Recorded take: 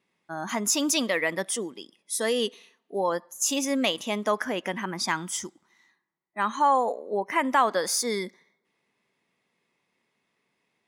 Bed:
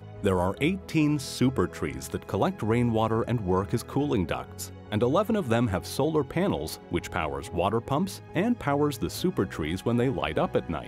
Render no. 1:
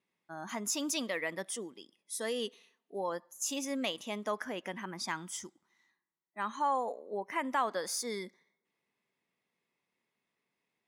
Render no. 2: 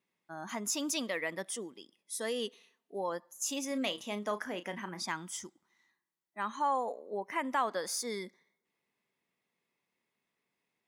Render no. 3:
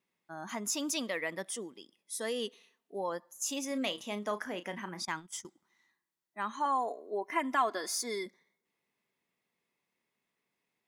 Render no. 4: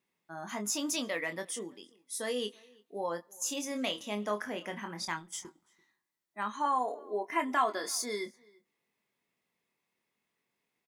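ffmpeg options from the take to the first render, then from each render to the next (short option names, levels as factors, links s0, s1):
-af "volume=0.335"
-filter_complex "[0:a]asettb=1/sr,asplit=3[s0][s1][s2];[s0]atrim=end=3.684[s3];[s1]atrim=start=3.68:end=5.04,asetpts=PTS-STARTPTS,afade=t=in:d=0.004:c=qsin,afade=t=out:st=1.356:d=0.004:c=qsin,asplit=2[s4][s5];[s5]adelay=34,volume=0.282[s6];[s4][s6]amix=inputs=2:normalize=0,atrim=end_sample=59976[s7];[s2]atrim=start=5.036[s8];[s3][s7]acrossfade=d=0.004:c1=hsin:c2=qsin[s9];[s9][s8]acrossfade=d=0.004:c1=qsin:c2=hsin"
-filter_complex "[0:a]asettb=1/sr,asplit=3[s0][s1][s2];[s0]atrim=end=5.054[s3];[s1]atrim=start=5.05:end=5.45,asetpts=PTS-STARTPTS,afade=t=in:d=0.004:c=qsin,afade=t=out:st=0.396:d=0.004:c=qsin,agate=range=0.126:threshold=0.00631:ratio=16:release=100:detection=peak[s4];[s2]atrim=start=5.446[s5];[s3][s4]acrossfade=d=0.004:c1=hsin:c2=qsin[s6];[s6][s5]acrossfade=d=0.004:c1=qsin:c2=hsin,asettb=1/sr,asplit=3[s7][s8][s9];[s7]atrim=end=6.654[s10];[s8]atrim=start=6.65:end=8.26,asetpts=PTS-STARTPTS,afade=t=in:d=0.004:c=qsin,afade=t=out:st=1.606:d=0.004:c=qsin,aecho=1:1:2.9:0.65,atrim=end_sample=71001[s11];[s9]atrim=start=8.256[s12];[s10][s11]acrossfade=d=0.004:c1=hsin:c2=qsin[s13];[s13][s12]acrossfade=d=0.004:c1=qsin:c2=hsin"
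-filter_complex "[0:a]asplit=2[s0][s1];[s1]adelay=24,volume=0.447[s2];[s0][s2]amix=inputs=2:normalize=0,asplit=2[s3][s4];[s4]adelay=338.2,volume=0.0501,highshelf=f=4000:g=-7.61[s5];[s3][s5]amix=inputs=2:normalize=0"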